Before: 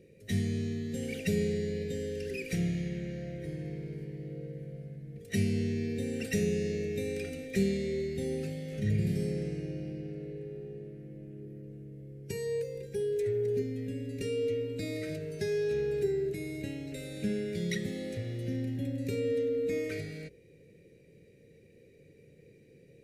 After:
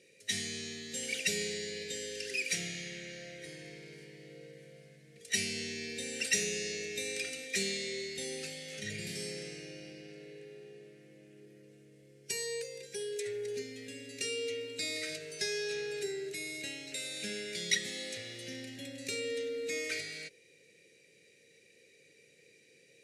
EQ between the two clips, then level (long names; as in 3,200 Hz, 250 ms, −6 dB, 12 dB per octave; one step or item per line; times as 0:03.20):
meter weighting curve ITU-R 468
0.0 dB